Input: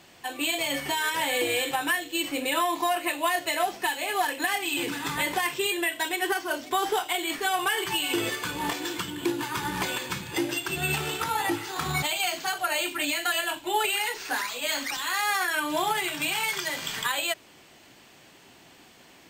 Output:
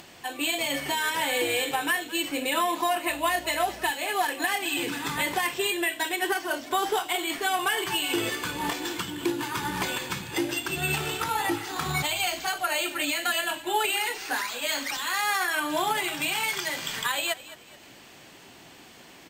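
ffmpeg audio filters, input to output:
-filter_complex "[0:a]asplit=4[s0][s1][s2][s3];[s1]adelay=214,afreqshift=-41,volume=0.141[s4];[s2]adelay=428,afreqshift=-82,volume=0.0495[s5];[s3]adelay=642,afreqshift=-123,volume=0.0174[s6];[s0][s4][s5][s6]amix=inputs=4:normalize=0,acompressor=mode=upward:threshold=0.00708:ratio=2.5,asettb=1/sr,asplit=3[s7][s8][s9];[s7]atrim=end=3.094[s10];[s8]atrim=start=3.09:end=3.91,asetpts=PTS-STARTPTS,afade=t=in:d=0.004:c=qsin,afade=t=out:st=0.816:d=0.004:c=qsin,aeval=exprs='val(0)+0.00316*(sin(2*PI*60*n/s)+sin(2*PI*2*60*n/s)/2+sin(2*PI*3*60*n/s)/3+sin(2*PI*4*60*n/s)/4+sin(2*PI*5*60*n/s)/5)':c=same[s11];[s9]atrim=start=3.906[s12];[s10][s11]acrossfade=d=0.004:c1=hsin:c2=qsin[s13];[s13][s12]acrossfade=d=0.004:c1=qsin:c2=hsin"

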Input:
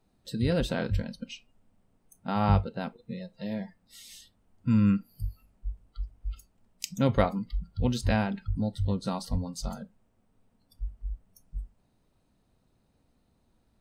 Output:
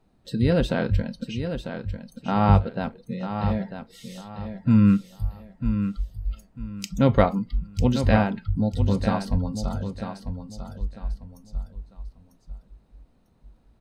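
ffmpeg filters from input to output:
-filter_complex "[0:a]highshelf=f=4300:g=-9.5,asplit=2[s0][s1];[s1]aecho=0:1:947|1894|2841:0.376|0.105|0.0295[s2];[s0][s2]amix=inputs=2:normalize=0,volume=2"

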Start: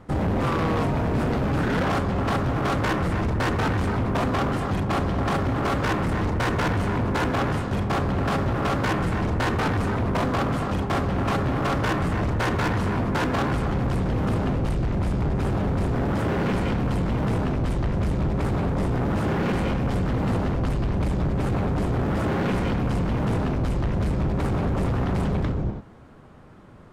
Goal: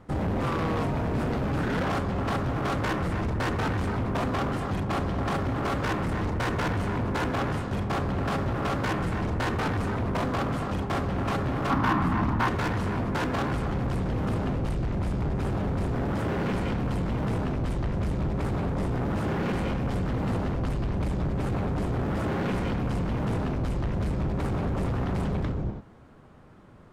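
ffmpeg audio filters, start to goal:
-filter_complex "[0:a]asettb=1/sr,asplit=3[s0][s1][s2];[s0]atrim=end=11.704[s3];[s1]atrim=start=11.7:end=12.48,asetpts=PTS-STARTPTS,afade=t=in:d=0.004:c=qsin,afade=t=out:st=0.776:d=0.004:c=qsin,equalizer=f=250:t=o:w=1:g=9,equalizer=f=500:t=o:w=1:g=-9,equalizer=f=1000:t=o:w=1:g=10,equalizer=f=8000:t=o:w=1:g=-7[s4];[s2]atrim=start=12.476[s5];[s3][s4]acrossfade=d=0.004:c1=hsin:c2=qsin[s6];[s6][s5]acrossfade=d=0.004:c1=qsin:c2=hsin,volume=0.631"

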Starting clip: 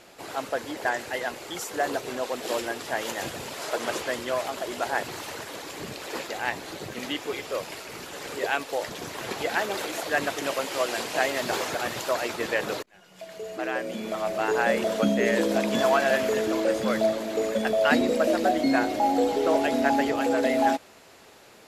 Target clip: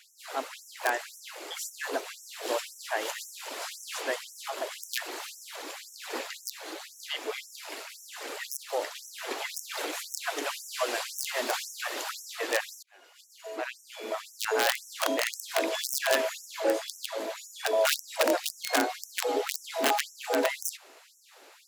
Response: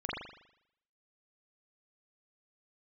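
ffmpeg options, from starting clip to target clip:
-filter_complex "[0:a]aeval=exprs='(mod(4.73*val(0)+1,2)-1)/4.73':c=same,asplit=2[s0][s1];[s1]asetrate=66075,aresample=44100,atempo=0.66742,volume=0.2[s2];[s0][s2]amix=inputs=2:normalize=0,afftfilt=real='re*gte(b*sr/1024,230*pow(5500/230,0.5+0.5*sin(2*PI*1.9*pts/sr)))':imag='im*gte(b*sr/1024,230*pow(5500/230,0.5+0.5*sin(2*PI*1.9*pts/sr)))':win_size=1024:overlap=0.75,volume=0.841"

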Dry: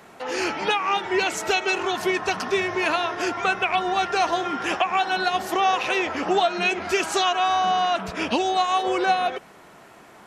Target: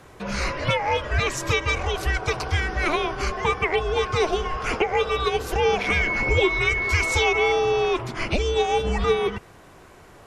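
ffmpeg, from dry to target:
-filter_complex "[0:a]afreqshift=-310,asettb=1/sr,asplit=3[s0][s1][s2];[s0]atrim=end=5.864[s3];[s1]atrim=start=5.86:end=7.52,asetpts=PTS-STARTPTS,afade=t=in:d=0.004:c=qsin,afade=t=out:st=1.656:d=0.004:c=qsin,aeval=exprs='val(0)+0.0708*sin(2*PI*2200*n/s)':c=same[s4];[s2]atrim=start=7.516[s5];[s3][s4]acrossfade=d=0.004:c1=hsin:c2=qsin[s6];[s6][s5]acrossfade=d=0.004:c1=qsin:c2=hsin"

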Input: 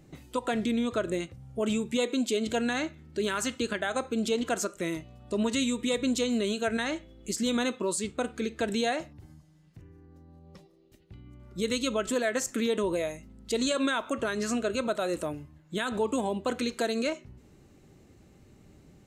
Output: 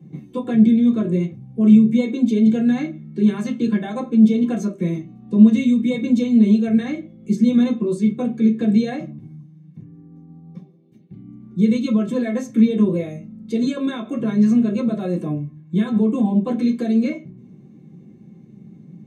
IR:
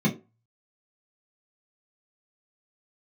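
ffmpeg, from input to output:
-filter_complex "[1:a]atrim=start_sample=2205[s0];[0:a][s0]afir=irnorm=-1:irlink=0,volume=0.251"

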